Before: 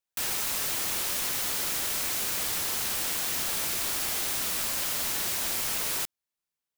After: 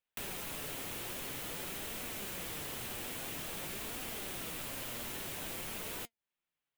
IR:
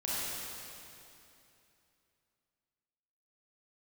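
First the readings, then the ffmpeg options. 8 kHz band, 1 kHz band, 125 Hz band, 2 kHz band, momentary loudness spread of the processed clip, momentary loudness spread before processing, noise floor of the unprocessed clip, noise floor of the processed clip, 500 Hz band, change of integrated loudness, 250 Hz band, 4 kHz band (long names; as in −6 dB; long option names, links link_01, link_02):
−14.5 dB, −9.0 dB, −2.5 dB, −9.5 dB, 0 LU, 0 LU, below −85 dBFS, below −85 dBFS, −4.5 dB, −12.5 dB, −2.5 dB, −12.0 dB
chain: -filter_complex "[0:a]highshelf=frequency=3900:width_type=q:width=1.5:gain=-8,flanger=delay=3.9:depth=4.7:regen=69:speed=0.5:shape=triangular,acrossover=split=600|4900[link_01][link_02][link_03];[link_01]acompressor=threshold=-50dB:ratio=4[link_04];[link_02]acompressor=threshold=-54dB:ratio=4[link_05];[link_03]acompressor=threshold=-47dB:ratio=4[link_06];[link_04][link_05][link_06]amix=inputs=3:normalize=0,volume=5dB"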